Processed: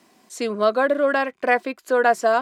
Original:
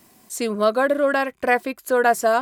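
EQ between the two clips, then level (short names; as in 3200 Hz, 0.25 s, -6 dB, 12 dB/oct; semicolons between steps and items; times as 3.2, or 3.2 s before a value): three-band isolator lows -17 dB, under 180 Hz, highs -12 dB, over 6800 Hz; high shelf 12000 Hz -4.5 dB; 0.0 dB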